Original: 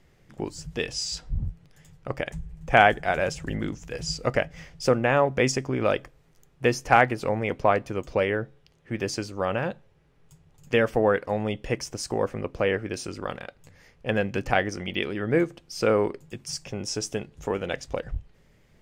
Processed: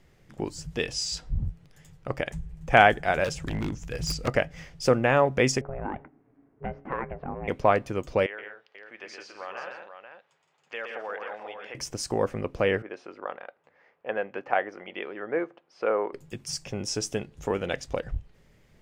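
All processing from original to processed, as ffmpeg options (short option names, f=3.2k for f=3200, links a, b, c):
-filter_complex "[0:a]asettb=1/sr,asplit=3[a][b][c];[a]atrim=end=3.244[d];[b]atrim=start=3.24:end=4.28,asetpts=PTS-STARTPTS,afade=t=in:d=0.004:c=qsin,afade=t=out:st=1.036:d=0.004:c=qsin,asubboost=boost=5:cutoff=210,aeval=exprs='0.075*(abs(mod(val(0)/0.075+3,4)-2)-1)':c=same[e];[c]atrim=start=4.276[f];[d][e]acrossfade=d=0.004:c1=hsin:c2=qsin[g];[g][f]acrossfade=d=0.004:c1=qsin:c2=hsin,asettb=1/sr,asplit=3[h][i][j];[h]atrim=end=5.614[k];[i]atrim=start=5.61:end=7.48,asetpts=PTS-STARTPTS,afade=t=in:d=0.004:c=qsin,afade=t=out:st=1.866:d=0.004:c=qsin,lowpass=f=1.7k:w=0.5412,lowpass=f=1.7k:w=1.3066,acompressor=threshold=-29dB:ratio=2.5:attack=3.2:release=140:knee=1:detection=peak,aeval=exprs='val(0)*sin(2*PI*280*n/s)':c=same[l];[j]atrim=start=7.476[m];[k][l]acrossfade=d=0.004:c1=hsin:c2=qsin[n];[n][m]acrossfade=d=0.004:c1=qsin:c2=hsin,asettb=1/sr,asplit=3[o][p][q];[o]atrim=end=8.264[r];[p]atrim=start=8.26:end=11.75,asetpts=PTS-STARTPTS,afade=t=in:d=0.004:c=qsin,afade=t=out:st=3.486:d=0.004:c=qsin,acompressor=threshold=-41dB:ratio=1.5:attack=3.2:release=140:knee=1:detection=peak,highpass=760,lowpass=3.3k,aecho=1:1:119|167|200|486:0.562|0.422|0.119|0.376,atrim=end_sample=153909[s];[q]atrim=start=11.746[t];[r][s]acrossfade=d=0.004:c1=hsin:c2=qsin[u];[u][t]acrossfade=d=0.004:c1=qsin:c2=hsin,asettb=1/sr,asplit=3[v][w][x];[v]atrim=end=12.824[y];[w]atrim=start=12.82:end=16.13,asetpts=PTS-STARTPTS,afade=t=in:d=0.004:c=qsin,afade=t=out:st=3.306:d=0.004:c=qsin,highpass=750,lowpass=2.3k,tiltshelf=f=1.1k:g=7[z];[x]atrim=start=16.126[aa];[y][z]acrossfade=d=0.004:c1=hsin:c2=qsin[ab];[ab][aa]acrossfade=d=0.004:c1=qsin:c2=hsin"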